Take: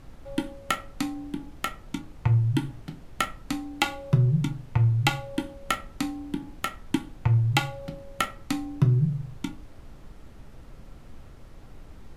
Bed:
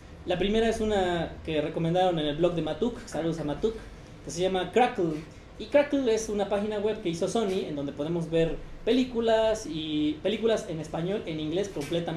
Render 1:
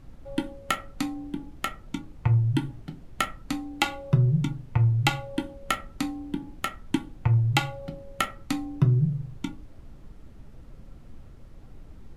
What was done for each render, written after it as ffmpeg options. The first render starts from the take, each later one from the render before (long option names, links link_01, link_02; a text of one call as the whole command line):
ffmpeg -i in.wav -af "afftdn=noise_reduction=6:noise_floor=-48" out.wav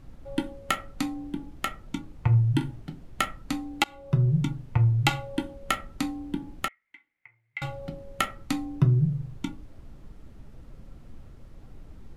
ffmpeg -i in.wav -filter_complex "[0:a]asettb=1/sr,asplit=3[link_01][link_02][link_03];[link_01]atrim=end=2.284[link_04];[link_02]atrim=start=2.28:end=2.76,asetpts=PTS-STARTPTS,afade=type=in:duration=0.004:curve=qsin,afade=type=out:start_time=0.476:duration=0.004:curve=qsin,asplit=2[link_05][link_06];[link_06]adelay=42,volume=-11dB[link_07];[link_05][link_07]amix=inputs=2:normalize=0,atrim=end_sample=21168[link_08];[link_03]atrim=start=2.756[link_09];[link_04][link_08]acrossfade=duration=0.004:curve1=hsin:curve2=qsin[link_10];[link_10][link_09]acrossfade=duration=0.004:curve1=qsin:curve2=hsin,asettb=1/sr,asplit=3[link_11][link_12][link_13];[link_11]atrim=end=6.684[link_14];[link_12]atrim=start=6.68:end=7.62,asetpts=PTS-STARTPTS,afade=type=in:duration=0.004:curve=qsin,afade=type=out:start_time=0.936:duration=0.004:curve=qsin,bandpass=frequency=2100:width_type=q:width=19[link_15];[link_13]atrim=start=7.616[link_16];[link_14][link_15]acrossfade=duration=0.004:curve1=hsin:curve2=qsin[link_17];[link_17][link_16]acrossfade=duration=0.004:curve1=qsin:curve2=hsin,asplit=2[link_18][link_19];[link_18]atrim=end=3.84,asetpts=PTS-STARTPTS,afade=type=out:start_time=3.836:duration=0.004:curve=hsin:silence=0.0668344[link_20];[link_19]atrim=start=3.84,asetpts=PTS-STARTPTS,afade=type=in:duration=0.59:curve=qsin:silence=0.0668344[link_21];[link_20][link_21]concat=n=2:v=0:a=1" out.wav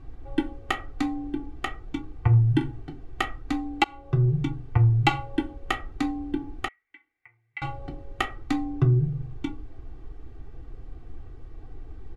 ffmpeg -i in.wav -af "aemphasis=mode=reproduction:type=75fm,aecho=1:1:2.6:0.96" out.wav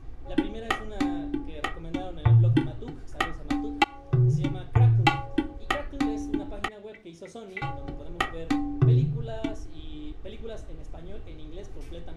ffmpeg -i in.wav -i bed.wav -filter_complex "[1:a]volume=-15dB[link_01];[0:a][link_01]amix=inputs=2:normalize=0" out.wav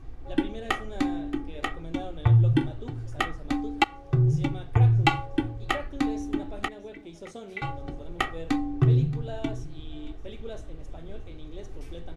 ffmpeg -i in.wav -af "aecho=1:1:626:0.112" out.wav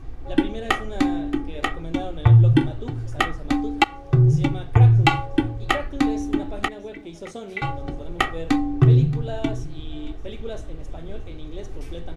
ffmpeg -i in.wav -af "volume=6dB,alimiter=limit=-2dB:level=0:latency=1" out.wav